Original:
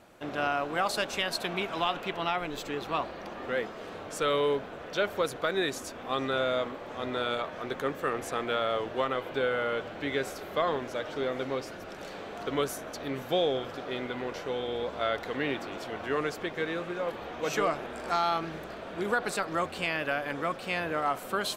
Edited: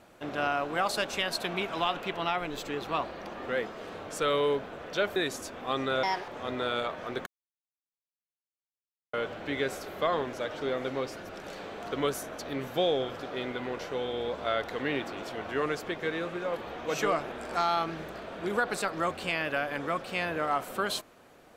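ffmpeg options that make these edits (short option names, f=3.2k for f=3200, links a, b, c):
-filter_complex "[0:a]asplit=6[a][b][c][d][e][f];[a]atrim=end=5.162[g];[b]atrim=start=5.578:end=6.454[h];[c]atrim=start=6.45:end=6.83,asetpts=PTS-STARTPTS,asetrate=66150,aresample=44100[i];[d]atrim=start=6.826:end=7.81,asetpts=PTS-STARTPTS,afade=t=out:st=0.98:d=0.004:c=hsin[j];[e]atrim=start=7.81:end=9.68,asetpts=PTS-STARTPTS,volume=0[k];[f]atrim=start=9.68,asetpts=PTS-STARTPTS,afade=t=in:d=0.004:c=hsin[l];[g][h]acrossfade=d=0.004:c1=hsin:c2=hsin[m];[m][i]acrossfade=d=0.004:c1=hsin:c2=hsin[n];[j][k][l]concat=n=3:v=0:a=1[o];[n][o]acrossfade=d=0.004:c1=hsin:c2=hsin"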